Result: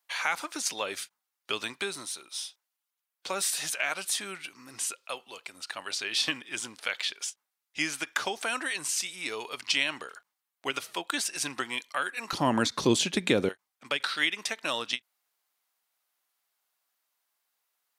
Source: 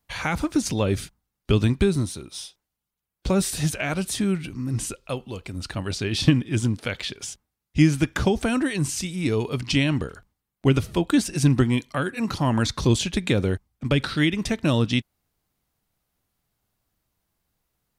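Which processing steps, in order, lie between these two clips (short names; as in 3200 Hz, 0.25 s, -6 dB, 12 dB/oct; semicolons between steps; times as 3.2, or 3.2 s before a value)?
HPF 900 Hz 12 dB/oct, from 12.33 s 260 Hz, from 13.49 s 890 Hz; ending taper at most 570 dB/s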